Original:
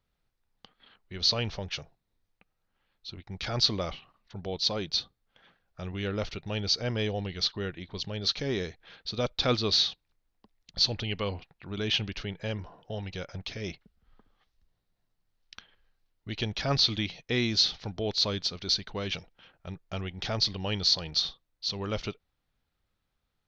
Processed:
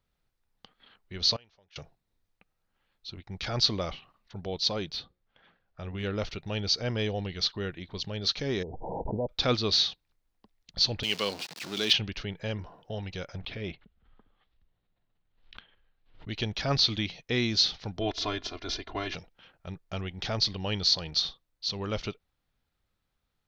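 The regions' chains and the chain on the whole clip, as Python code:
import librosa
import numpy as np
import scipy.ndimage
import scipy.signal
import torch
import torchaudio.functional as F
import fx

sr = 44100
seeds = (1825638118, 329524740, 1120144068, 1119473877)

y = fx.chain(x, sr, fx.low_shelf(hz=290.0, db=-11.5),
    fx.gate_flip(shuts_db=-35.0, range_db=-24), at=(1.36, 1.76))
y = fx.chain(y, sr, fx.hum_notches(base_hz=60, count=9),
    fx.clip_hard(threshold_db=-26.5),
    fx.air_absorb(metres=140.0), at=(4.93, 6.04))
y = fx.chain(y, sr, fx.brickwall_lowpass(high_hz=1000.0),
    fx.low_shelf(hz=400.0, db=-4.5),
    fx.pre_swell(db_per_s=21.0), at=(8.63, 9.29))
y = fx.chain(y, sr, fx.zero_step(step_db=-37.5),
    fx.bessel_highpass(hz=230.0, order=4),
    fx.peak_eq(hz=4700.0, db=12.5, octaves=1.2), at=(11.03, 11.93))
y = fx.chain(y, sr, fx.cheby1_lowpass(hz=3500.0, order=3),
    fx.pre_swell(db_per_s=110.0), at=(13.41, 16.29))
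y = fx.spec_clip(y, sr, under_db=16, at=(18.0, 19.14), fade=0.02)
y = fx.lowpass(y, sr, hz=1400.0, slope=6, at=(18.0, 19.14), fade=0.02)
y = fx.comb(y, sr, ms=2.9, depth=0.9, at=(18.0, 19.14), fade=0.02)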